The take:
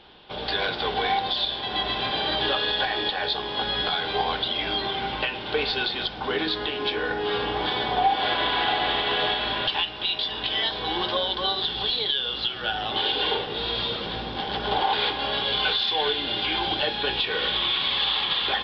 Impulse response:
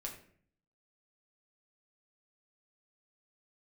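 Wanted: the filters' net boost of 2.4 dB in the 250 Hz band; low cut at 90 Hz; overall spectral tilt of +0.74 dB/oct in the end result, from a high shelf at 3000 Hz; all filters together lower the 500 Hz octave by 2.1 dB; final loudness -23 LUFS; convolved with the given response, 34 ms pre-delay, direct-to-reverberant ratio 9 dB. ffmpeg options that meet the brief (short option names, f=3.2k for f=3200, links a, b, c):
-filter_complex "[0:a]highpass=90,equalizer=f=250:t=o:g=5,equalizer=f=500:t=o:g=-4.5,highshelf=f=3k:g=7.5,asplit=2[a][b];[1:a]atrim=start_sample=2205,adelay=34[c];[b][c]afir=irnorm=-1:irlink=0,volume=-7.5dB[d];[a][d]amix=inputs=2:normalize=0,volume=-2dB"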